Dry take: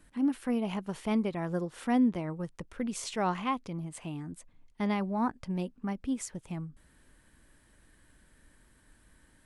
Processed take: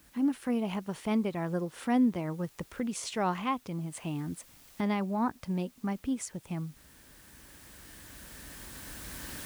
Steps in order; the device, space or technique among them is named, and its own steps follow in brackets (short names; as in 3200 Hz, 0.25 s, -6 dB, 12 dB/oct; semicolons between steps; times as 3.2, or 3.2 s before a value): HPF 47 Hz; cheap recorder with automatic gain (white noise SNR 30 dB; recorder AGC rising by 6.2 dB/s)